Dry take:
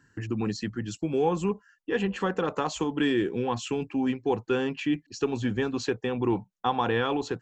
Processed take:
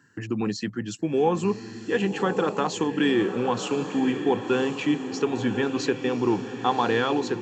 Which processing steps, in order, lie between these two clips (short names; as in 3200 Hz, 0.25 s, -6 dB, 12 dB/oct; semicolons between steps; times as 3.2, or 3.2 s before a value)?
HPF 130 Hz 12 dB/oct; on a send: diffused feedback echo 1.109 s, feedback 50%, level -9 dB; on the sum: gain +3 dB